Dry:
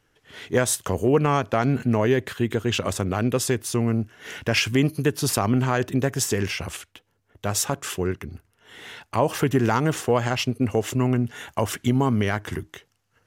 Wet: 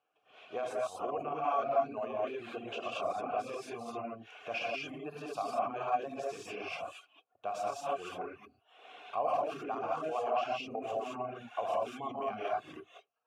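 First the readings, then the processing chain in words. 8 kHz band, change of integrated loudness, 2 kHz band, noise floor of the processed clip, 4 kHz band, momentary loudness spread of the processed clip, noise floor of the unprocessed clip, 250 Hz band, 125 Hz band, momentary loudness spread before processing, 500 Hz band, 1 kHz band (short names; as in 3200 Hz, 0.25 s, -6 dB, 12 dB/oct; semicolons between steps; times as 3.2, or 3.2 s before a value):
-27.0 dB, -13.0 dB, -14.5 dB, -75 dBFS, -17.0 dB, 11 LU, -69 dBFS, -22.0 dB, -31.5 dB, 12 LU, -10.5 dB, -5.0 dB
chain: non-linear reverb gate 0.25 s rising, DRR -6 dB; limiter -12.5 dBFS, peak gain reduction 14 dB; reverb removal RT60 0.7 s; vowel filter a; low shelf 67 Hz -9 dB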